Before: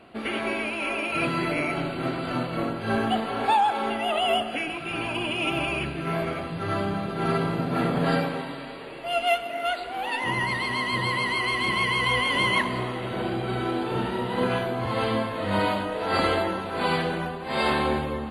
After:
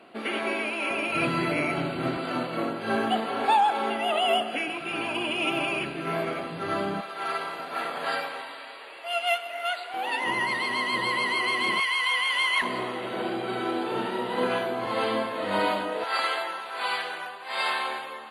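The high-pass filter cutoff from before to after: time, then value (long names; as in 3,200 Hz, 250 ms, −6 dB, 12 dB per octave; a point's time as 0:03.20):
240 Hz
from 0:00.91 86 Hz
from 0:02.17 220 Hz
from 0:07.01 790 Hz
from 0:09.94 270 Hz
from 0:11.80 1,100 Hz
from 0:12.62 270 Hz
from 0:16.04 940 Hz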